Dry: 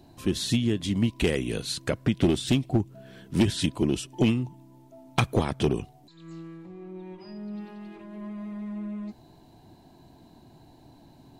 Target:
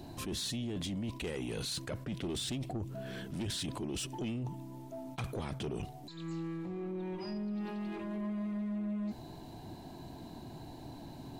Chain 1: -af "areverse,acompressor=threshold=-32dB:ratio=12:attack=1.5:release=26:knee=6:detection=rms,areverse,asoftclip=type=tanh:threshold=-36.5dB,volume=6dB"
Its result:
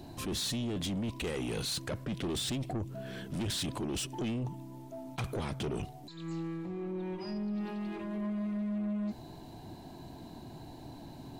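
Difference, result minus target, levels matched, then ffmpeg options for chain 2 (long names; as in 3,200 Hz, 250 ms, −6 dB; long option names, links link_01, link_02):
downward compressor: peak gain reduction −5.5 dB
-af "areverse,acompressor=threshold=-38dB:ratio=12:attack=1.5:release=26:knee=6:detection=rms,areverse,asoftclip=type=tanh:threshold=-36.5dB,volume=6dB"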